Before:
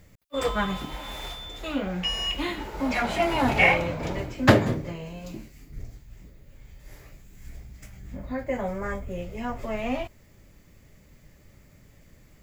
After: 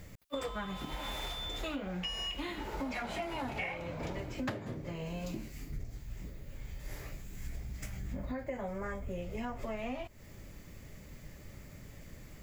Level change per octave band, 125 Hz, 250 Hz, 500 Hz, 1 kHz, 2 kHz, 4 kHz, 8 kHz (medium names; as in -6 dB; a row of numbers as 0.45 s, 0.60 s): -10.5 dB, -11.5 dB, -12.0 dB, -12.5 dB, -15.0 dB, -9.0 dB, -7.5 dB